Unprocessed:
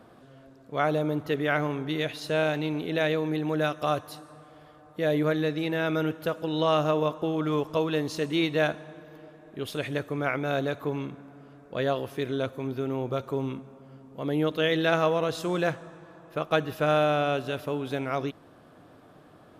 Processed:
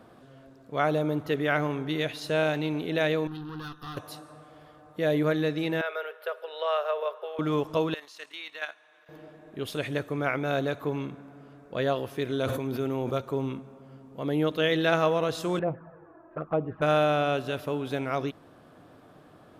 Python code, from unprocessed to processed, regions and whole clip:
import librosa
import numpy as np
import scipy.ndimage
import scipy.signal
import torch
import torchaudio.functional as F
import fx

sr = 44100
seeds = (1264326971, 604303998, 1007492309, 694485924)

y = fx.chain(x, sr, fx.tube_stage(drive_db=31.0, bias=0.8),
    fx.fixed_phaser(hz=2200.0, stages=6), at=(3.27, 3.97))
y = fx.chain(y, sr, fx.cheby_ripple_highpass(hz=400.0, ripple_db=6),
    fx.peak_eq(hz=6800.0, db=-15.0, octaves=0.53), at=(5.81, 7.39))
y = fx.chain(y, sr, fx.highpass(hz=1300.0, slope=12),
    fx.high_shelf(hz=4700.0, db=-6.5),
    fx.level_steps(step_db=10), at=(7.94, 9.09))
y = fx.chain(y, sr, fx.high_shelf(hz=5100.0, db=5.5),
    fx.hum_notches(base_hz=60, count=3),
    fx.sustainer(db_per_s=33.0), at=(12.3, 13.18))
y = fx.chain(y, sr, fx.lowpass(hz=1600.0, slope=24),
    fx.env_flanger(rest_ms=3.7, full_db=-23.0), at=(15.59, 16.82))